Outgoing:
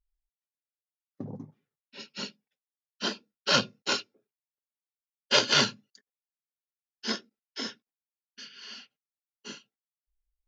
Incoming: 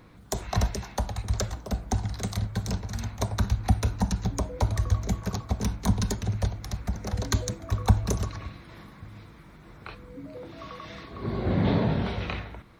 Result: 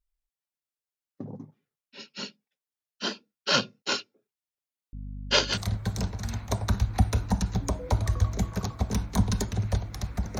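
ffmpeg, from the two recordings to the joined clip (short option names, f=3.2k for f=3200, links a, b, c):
-filter_complex "[0:a]asettb=1/sr,asplit=3[a][b][c];[a]atrim=end=4.934[d];[b]atrim=start=4.93:end=5.58,asetpts=PTS-STARTPTS,afade=t=in:d=0.004:c=qsin,afade=t=out:st=0.646:d=0.004:c=qsin,aeval=exprs='val(0)+0.0158*(sin(2*PI*50*n/s)+sin(2*PI*2*50*n/s)/2+sin(2*PI*3*50*n/s)/3+sin(2*PI*4*50*n/s)/4+sin(2*PI*5*50*n/s)/5)':c=same[e];[c]atrim=start=5.576[f];[d][e]acrossfade=d=0.004:c1=hsin:c2=qsin[g];[g][f]acrossfade=d=0.004:c1=qsin:c2=hsin,apad=whole_dur=10.39,atrim=end=10.39,atrim=end=5.58,asetpts=PTS-STARTPTS[h];[1:a]atrim=start=2.2:end=7.09,asetpts=PTS-STARTPTS[i];[h][i]acrossfade=d=0.08:c1=tri:c2=tri"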